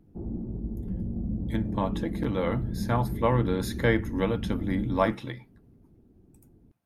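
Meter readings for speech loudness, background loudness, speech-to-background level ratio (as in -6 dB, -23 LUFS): -29.0 LUFS, -34.0 LUFS, 5.0 dB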